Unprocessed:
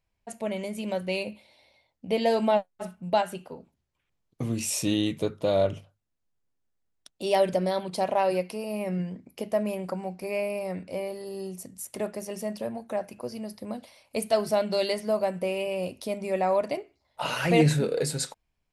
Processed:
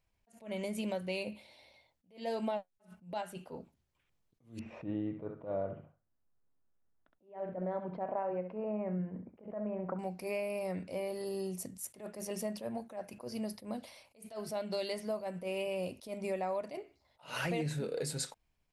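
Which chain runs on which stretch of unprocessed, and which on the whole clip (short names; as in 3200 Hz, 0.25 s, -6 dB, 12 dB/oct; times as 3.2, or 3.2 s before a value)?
4.59–9.99 LPF 1700 Hz 24 dB/oct + feedback echo 66 ms, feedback 18%, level -11 dB
whole clip: compressor 6:1, threshold -33 dBFS; attack slew limiter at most 180 dB/s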